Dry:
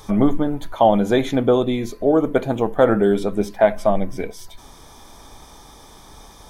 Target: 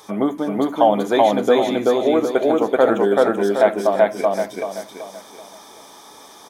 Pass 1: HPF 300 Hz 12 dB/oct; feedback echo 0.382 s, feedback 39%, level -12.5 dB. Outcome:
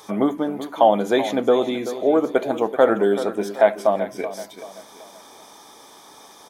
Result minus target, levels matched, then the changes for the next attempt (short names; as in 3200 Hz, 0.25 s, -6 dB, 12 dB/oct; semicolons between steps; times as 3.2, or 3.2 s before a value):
echo-to-direct -12 dB
change: feedback echo 0.382 s, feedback 39%, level -0.5 dB